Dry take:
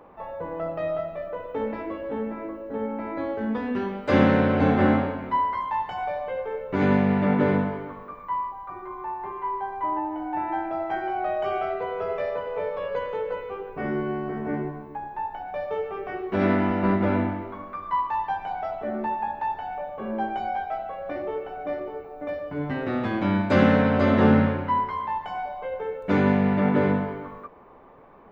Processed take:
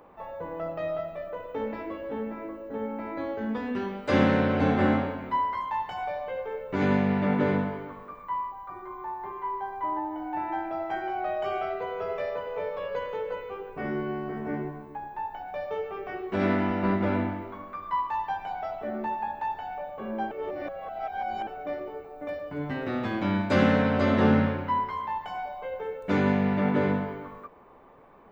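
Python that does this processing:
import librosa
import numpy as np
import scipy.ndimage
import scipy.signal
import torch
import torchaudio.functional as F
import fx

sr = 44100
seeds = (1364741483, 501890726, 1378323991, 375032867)

y = fx.notch(x, sr, hz=2600.0, q=6.7, at=(8.67, 10.23))
y = fx.edit(y, sr, fx.reverse_span(start_s=20.31, length_s=1.16), tone=tone)
y = fx.high_shelf(y, sr, hz=4100.0, db=8.0)
y = y * librosa.db_to_amplitude(-3.5)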